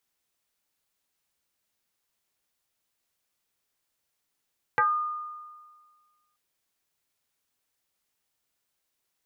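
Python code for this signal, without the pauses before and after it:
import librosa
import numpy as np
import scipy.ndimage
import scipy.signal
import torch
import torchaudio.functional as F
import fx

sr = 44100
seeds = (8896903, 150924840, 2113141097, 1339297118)

y = fx.fm2(sr, length_s=1.58, level_db=-18.0, carrier_hz=1220.0, ratio=0.3, index=2.1, index_s=0.25, decay_s=1.65, shape='exponential')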